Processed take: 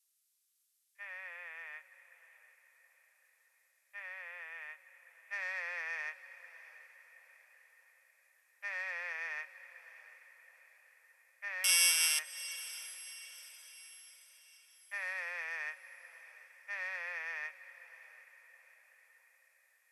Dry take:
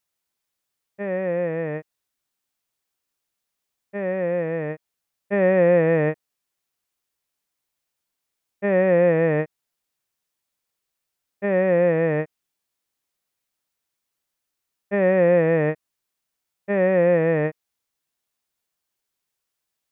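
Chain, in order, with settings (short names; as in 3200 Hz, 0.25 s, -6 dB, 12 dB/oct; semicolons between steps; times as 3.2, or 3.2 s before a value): 11.64–12.19 sample sorter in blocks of 16 samples; HPF 970 Hz 24 dB/oct; in parallel at -6 dB: soft clip -24 dBFS, distortion -10 dB; on the sum: differentiator; on a send: diffused feedback echo 0.72 s, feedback 47%, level -15 dB; on the sum: gain +1 dB; Vorbis 48 kbps 32000 Hz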